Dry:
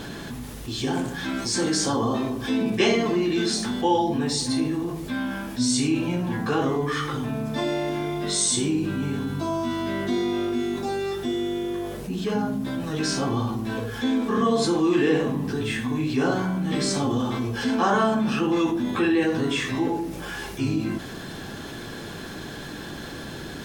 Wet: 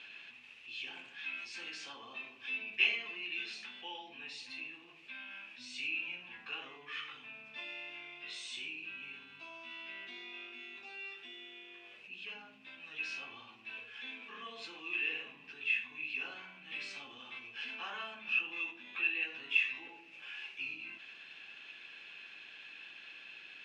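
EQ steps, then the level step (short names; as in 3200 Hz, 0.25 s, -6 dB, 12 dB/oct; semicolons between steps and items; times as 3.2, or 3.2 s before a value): band-pass 2600 Hz, Q 14; air absorption 59 m; +6.5 dB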